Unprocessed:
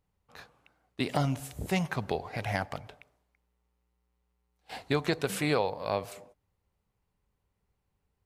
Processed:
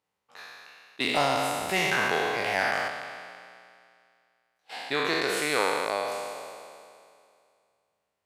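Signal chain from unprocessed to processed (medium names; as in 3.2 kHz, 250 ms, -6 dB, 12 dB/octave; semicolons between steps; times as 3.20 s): spectral sustain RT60 2.36 s; frequency weighting A; 1.00–2.89 s: waveshaping leveller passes 1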